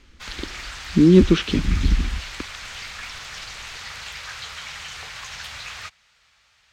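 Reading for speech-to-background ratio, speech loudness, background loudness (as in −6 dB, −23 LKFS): 16.0 dB, −18.0 LKFS, −34.0 LKFS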